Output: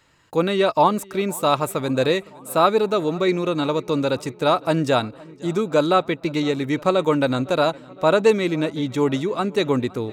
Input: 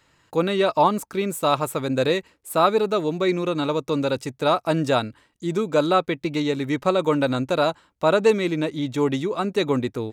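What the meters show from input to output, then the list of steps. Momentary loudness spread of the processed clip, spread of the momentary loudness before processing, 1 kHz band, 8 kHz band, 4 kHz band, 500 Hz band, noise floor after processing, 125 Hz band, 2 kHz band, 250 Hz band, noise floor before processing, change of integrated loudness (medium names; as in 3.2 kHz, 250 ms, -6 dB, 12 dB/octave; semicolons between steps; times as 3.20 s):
7 LU, 7 LU, +1.5 dB, +1.5 dB, +1.5 dB, +1.5 dB, -45 dBFS, +1.5 dB, +1.5 dB, +1.5 dB, -64 dBFS, +1.5 dB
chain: filtered feedback delay 512 ms, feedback 68%, low-pass 4.7 kHz, level -23 dB; trim +1.5 dB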